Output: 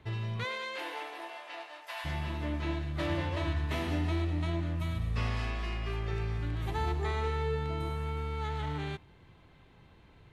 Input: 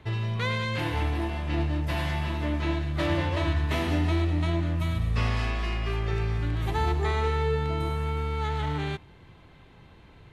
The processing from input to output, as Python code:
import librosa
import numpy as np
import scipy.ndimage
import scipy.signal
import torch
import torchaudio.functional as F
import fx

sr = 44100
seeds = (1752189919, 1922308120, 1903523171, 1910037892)

y = fx.highpass(x, sr, hz=fx.line((0.43, 320.0), (2.04, 750.0)), slope=24, at=(0.43, 2.04), fade=0.02)
y = y * 10.0 ** (-6.0 / 20.0)